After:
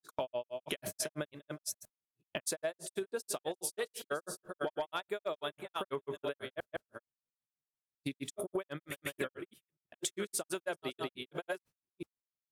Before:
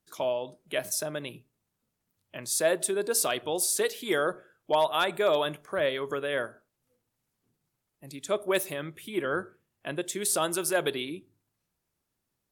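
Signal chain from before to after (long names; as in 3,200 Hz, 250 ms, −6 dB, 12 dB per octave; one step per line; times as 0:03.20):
delay that plays each chunk backwards 445 ms, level −13 dB
granular cloud 112 ms, grains 6.1 per second, pitch spread up and down by 0 semitones
downward expander −51 dBFS
downward compressor 12 to 1, threshold −46 dBFS, peak gain reduction 25.5 dB
level +12 dB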